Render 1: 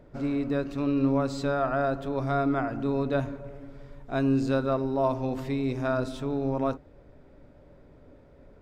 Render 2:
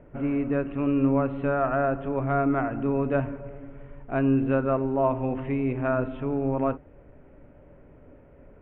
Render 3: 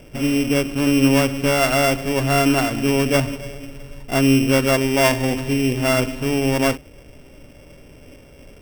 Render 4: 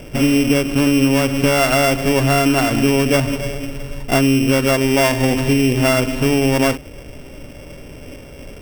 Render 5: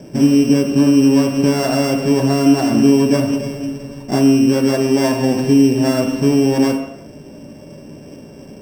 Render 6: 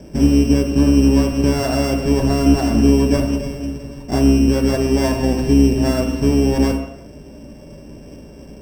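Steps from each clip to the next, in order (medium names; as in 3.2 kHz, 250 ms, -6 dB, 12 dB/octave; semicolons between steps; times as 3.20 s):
steep low-pass 3 kHz 72 dB/octave; trim +2 dB
sorted samples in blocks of 16 samples; trim +7 dB
compression, threshold -20 dBFS, peak gain reduction 9.5 dB; trim +8.5 dB
reverberation RT60 0.80 s, pre-delay 3 ms, DRR 1 dB; trim -13 dB
octave divider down 2 oct, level -2 dB; trim -2.5 dB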